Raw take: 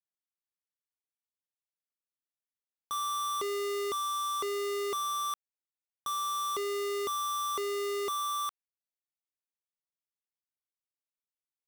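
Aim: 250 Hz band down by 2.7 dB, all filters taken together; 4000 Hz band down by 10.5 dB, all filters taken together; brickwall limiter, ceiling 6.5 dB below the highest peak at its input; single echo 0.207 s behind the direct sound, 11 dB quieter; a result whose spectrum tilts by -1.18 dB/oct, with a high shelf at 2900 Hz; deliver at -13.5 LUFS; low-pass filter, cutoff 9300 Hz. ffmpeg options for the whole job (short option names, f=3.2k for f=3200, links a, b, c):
-af "lowpass=9.3k,equalizer=f=250:t=o:g=-7,highshelf=f=2.9k:g=-8,equalizer=f=4k:t=o:g=-7,alimiter=level_in=14dB:limit=-24dB:level=0:latency=1,volume=-14dB,aecho=1:1:207:0.282,volume=27dB"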